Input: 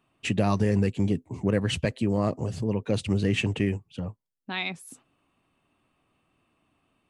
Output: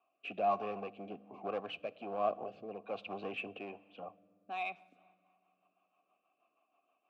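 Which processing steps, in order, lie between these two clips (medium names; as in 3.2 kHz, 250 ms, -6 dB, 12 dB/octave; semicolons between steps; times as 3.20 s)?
three-band isolator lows -17 dB, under 180 Hz, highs -24 dB, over 4.3 kHz; in parallel at -5 dB: wavefolder -27 dBFS; on the sum: reverberation RT60 2.4 s, pre-delay 5 ms, DRR 19 dB; rotary cabinet horn 1.2 Hz, later 6.3 Hz, at 4.57 s; vowel filter a; trim +3.5 dB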